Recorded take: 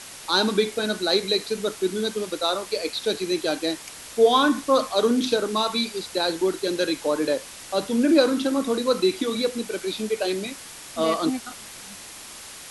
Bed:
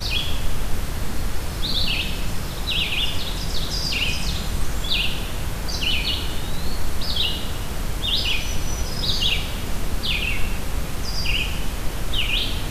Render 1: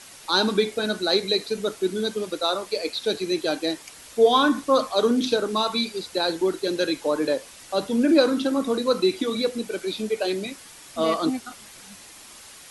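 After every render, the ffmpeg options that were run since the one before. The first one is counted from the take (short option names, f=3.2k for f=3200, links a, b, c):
-af "afftdn=nr=6:nf=-41"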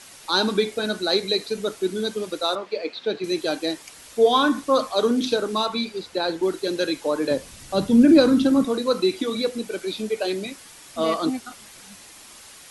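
-filter_complex "[0:a]asettb=1/sr,asplit=3[a][b][c];[a]atrim=end=2.554[d];[b]atrim=start=2.55:end=3.24,asetpts=PTS-STARTPTS,afade=t=in:d=0.004:c=qsin,afade=t=out:st=0.686:d=0.004:c=qsin,highpass=140,lowpass=3k[e];[c]atrim=start=3.236[f];[d][e]acrossfade=d=0.004:c1=hsin:c2=qsin[g];[g][f]acrossfade=d=0.004:c1=qsin:c2=hsin,asettb=1/sr,asplit=3[h][i][j];[h]atrim=end=5.664[k];[i]atrim=start=5.66:end=6.43,asetpts=PTS-STARTPTS,afade=t=in:d=0.004:c=qsin,afade=t=out:st=0.766:d=0.004:c=qsin,aemphasis=mode=reproduction:type=cd[l];[j]atrim=start=6.426[m];[k][l]acrossfade=d=0.004:c1=hsin:c2=qsin[n];[n][m]acrossfade=d=0.004:c1=qsin:c2=hsin,asettb=1/sr,asplit=3[o][p][q];[o]atrim=end=7.314[r];[p]atrim=start=7.31:end=8.65,asetpts=PTS-STARTPTS,afade=t=in:d=0.004:c=qsin,afade=t=out:st=1.336:d=0.004:c=qsin,bass=f=250:g=15,treble=f=4k:g=1[s];[q]atrim=start=8.646[t];[r][s]acrossfade=d=0.004:c1=hsin:c2=qsin[u];[u][t]acrossfade=d=0.004:c1=qsin:c2=hsin"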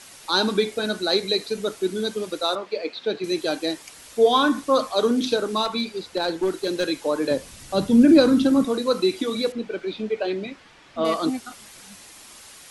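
-filter_complex "[0:a]asettb=1/sr,asplit=3[a][b][c];[a]atrim=end=5.654[d];[b]atrim=start=5.65:end=6.86,asetpts=PTS-STARTPTS,afade=t=in:d=0.004:c=qsin,afade=t=out:st=1.206:d=0.004:c=qsin,aeval=exprs='clip(val(0),-1,0.112)':c=same[e];[c]atrim=start=6.856[f];[d][e]acrossfade=d=0.004:c1=hsin:c2=qsin[g];[g][f]acrossfade=d=0.004:c1=qsin:c2=hsin,asettb=1/sr,asplit=3[h][i][j];[h]atrim=end=9.524[k];[i]atrim=start=9.52:end=11.05,asetpts=PTS-STARTPTS,afade=t=in:d=0.004:c=qsin,afade=t=out:st=1.526:d=0.004:c=qsin,lowpass=3k[l];[j]atrim=start=11.046[m];[k][l]acrossfade=d=0.004:c1=hsin:c2=qsin[n];[n][m]acrossfade=d=0.004:c1=qsin:c2=hsin"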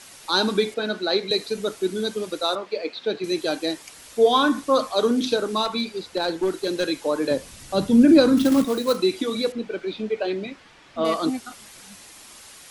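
-filter_complex "[0:a]asettb=1/sr,asplit=3[a][b][c];[a]atrim=end=0.744[d];[b]atrim=start=0.74:end=1.31,asetpts=PTS-STARTPTS,afade=t=in:d=0.004:c=qsin,afade=t=out:st=0.566:d=0.004:c=qsin,acrossover=split=160 4900:gain=0.224 1 0.178[e][f][g];[e][f][g]amix=inputs=3:normalize=0[h];[c]atrim=start=1.306[i];[d][h]acrossfade=d=0.004:c1=hsin:c2=qsin[j];[j][i]acrossfade=d=0.004:c1=qsin:c2=hsin,asettb=1/sr,asplit=3[k][l][m];[k]atrim=end=8.374[n];[l]atrim=start=8.37:end=8.97,asetpts=PTS-STARTPTS,afade=t=in:d=0.004:c=qsin,afade=t=out:st=0.596:d=0.004:c=qsin,acrusher=bits=4:mode=log:mix=0:aa=0.000001[o];[m]atrim=start=8.966[p];[n][o]acrossfade=d=0.004:c1=hsin:c2=qsin[q];[q][p]acrossfade=d=0.004:c1=qsin:c2=hsin"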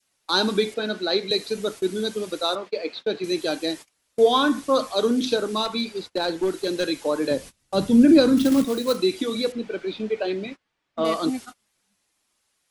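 -af "agate=range=-27dB:threshold=-35dB:ratio=16:detection=peak,adynamicequalizer=threshold=0.02:dfrequency=990:dqfactor=0.97:tfrequency=990:tqfactor=0.97:attack=5:release=100:ratio=0.375:range=2.5:mode=cutabove:tftype=bell"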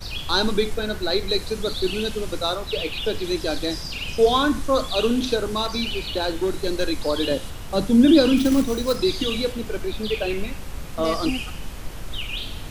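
-filter_complex "[1:a]volume=-8dB[a];[0:a][a]amix=inputs=2:normalize=0"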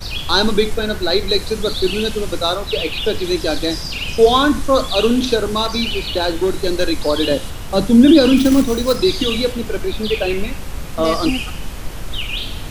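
-af "volume=6dB,alimiter=limit=-1dB:level=0:latency=1"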